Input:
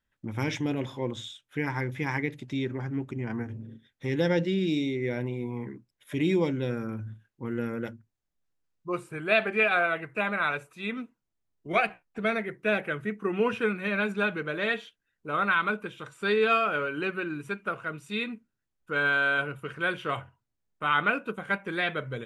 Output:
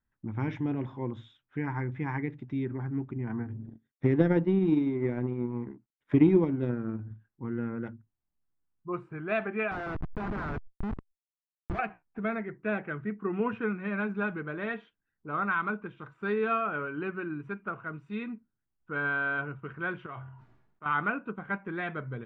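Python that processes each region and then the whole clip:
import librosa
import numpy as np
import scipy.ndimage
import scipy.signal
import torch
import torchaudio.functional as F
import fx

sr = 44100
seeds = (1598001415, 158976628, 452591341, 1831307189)

y = fx.chain(x, sr, fx.law_mismatch(coded='A'),
    fx.peak_eq(hz=320.0, db=4.5, octaves=1.9),
    fx.transient(attack_db=9, sustain_db=-4), at=(3.66, 7.11))
y = fx.chain(y, sr, fx.schmitt(flips_db=-29.5),
    fx.high_shelf(hz=5200.0, db=-5.0),
    fx.pre_swell(db_per_s=66.0), at=(9.71, 11.79))
y = fx.chain(y, sr, fx.low_shelf(hz=150.0, db=-10.5),
    fx.comb_fb(f0_hz=130.0, decay_s=0.21, harmonics='odd', damping=0.0, mix_pct=70),
    fx.sustainer(db_per_s=53.0), at=(20.06, 20.86))
y = scipy.signal.sosfilt(scipy.signal.butter(2, 1300.0, 'lowpass', fs=sr, output='sos'), y)
y = fx.peak_eq(y, sr, hz=530.0, db=-9.0, octaves=0.66)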